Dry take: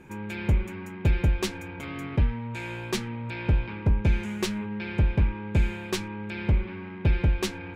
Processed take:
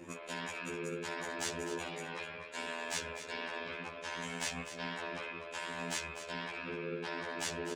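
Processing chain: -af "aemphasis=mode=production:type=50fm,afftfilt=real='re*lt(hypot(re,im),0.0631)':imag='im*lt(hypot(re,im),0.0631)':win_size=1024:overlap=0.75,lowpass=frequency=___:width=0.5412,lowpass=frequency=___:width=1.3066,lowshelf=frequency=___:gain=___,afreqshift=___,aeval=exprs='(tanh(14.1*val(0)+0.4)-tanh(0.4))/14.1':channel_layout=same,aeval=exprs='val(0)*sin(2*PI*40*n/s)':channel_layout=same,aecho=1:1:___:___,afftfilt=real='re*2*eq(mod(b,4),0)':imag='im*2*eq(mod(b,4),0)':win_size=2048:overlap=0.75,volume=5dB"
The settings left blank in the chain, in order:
8.1k, 8.1k, 350, 3, 110, 250, 0.266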